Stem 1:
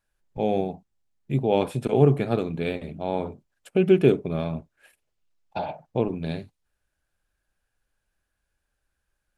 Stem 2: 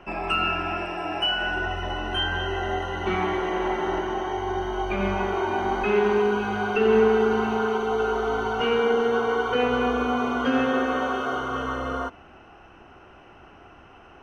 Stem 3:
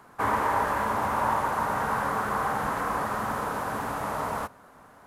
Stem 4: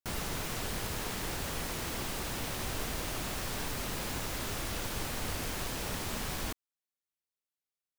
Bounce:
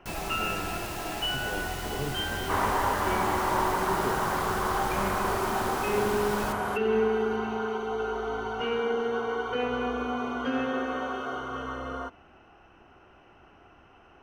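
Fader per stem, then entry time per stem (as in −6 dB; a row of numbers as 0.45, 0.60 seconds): −17.0, −6.5, −2.0, −1.5 decibels; 0.00, 0.00, 2.30, 0.00 seconds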